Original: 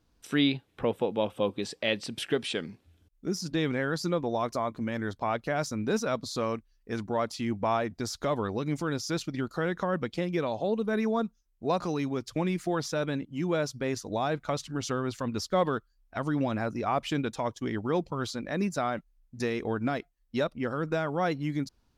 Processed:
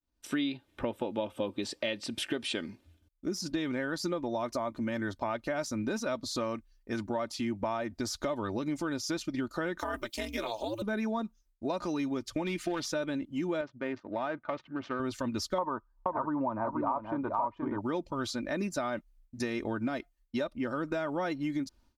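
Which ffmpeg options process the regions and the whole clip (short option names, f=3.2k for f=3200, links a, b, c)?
-filter_complex "[0:a]asettb=1/sr,asplit=3[a][b][c];[a]atrim=end=9.794[d];[b]atrim=start=9.79:end=10.82,asetpts=PTS-STARTPTS,afade=t=in:d=0.004:c=qsin,afade=t=out:st=1.026:d=0.004:c=qsin,aemphasis=mode=production:type=riaa,aeval=exprs='val(0)*sin(2*PI*110*n/s)':c=same[e];[c]atrim=start=10.816[f];[d][e]acrossfade=d=0.004:c1=hsin:c2=qsin[g];[g][f]acrossfade=d=0.004:c1=qsin:c2=hsin,asettb=1/sr,asplit=3[h][i][j];[h]atrim=end=12.454[k];[i]atrim=start=12.45:end=12.85,asetpts=PTS-STARTPTS,afade=t=in:d=0.004:c=qsin,afade=t=out:st=0.396:d=0.004:c=qsin,asoftclip=type=hard:threshold=-22dB,equalizer=f=3k:t=o:w=1.1:g=8[l];[j]atrim=start=12.846[m];[k][l]acrossfade=d=0.004:c1=hsin:c2=qsin[n];[n][m]acrossfade=d=0.004:c1=qsin:c2=hsin,asettb=1/sr,asplit=3[o][p][q];[o]atrim=end=13.614[r];[p]atrim=start=13.61:end=15,asetpts=PTS-STARTPTS,afade=t=in:d=0.004:c=qsin,afade=t=out:st=1.386:d=0.004:c=qsin,tiltshelf=f=1.3k:g=-5,adynamicsmooth=sensitivity=4:basefreq=1.1k,highpass=120,lowpass=2.2k[s];[q]atrim=start=14.996[t];[r][s]acrossfade=d=0.004:c1=hsin:c2=qsin[u];[u][t]acrossfade=d=0.004:c1=qsin:c2=hsin,asettb=1/sr,asplit=3[v][w][x];[v]atrim=end=15.584[y];[w]atrim=start=15.58:end=17.81,asetpts=PTS-STARTPTS,afade=t=in:d=0.004:c=qsin,afade=t=out:st=2.226:d=0.004:c=qsin,lowpass=f=1k:t=q:w=6.8,aecho=1:1:477:0.562,atrim=end_sample=98343[z];[x]atrim=start=17.806[aa];[y][z]acrossfade=d=0.004:c1=hsin:c2=qsin[ab];[ab][aa]acrossfade=d=0.004:c1=qsin:c2=hsin,agate=range=-33dB:threshold=-58dB:ratio=3:detection=peak,aecho=1:1:3.3:0.53,acompressor=threshold=-29dB:ratio=6"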